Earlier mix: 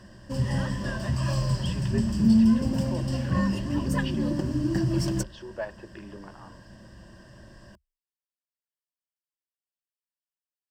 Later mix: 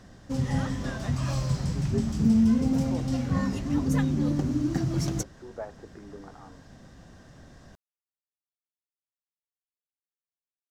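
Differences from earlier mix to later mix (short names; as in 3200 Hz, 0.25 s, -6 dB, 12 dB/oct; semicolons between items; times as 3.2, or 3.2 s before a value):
speech: add Gaussian blur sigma 5.3 samples; master: remove ripple EQ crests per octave 1.3, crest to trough 11 dB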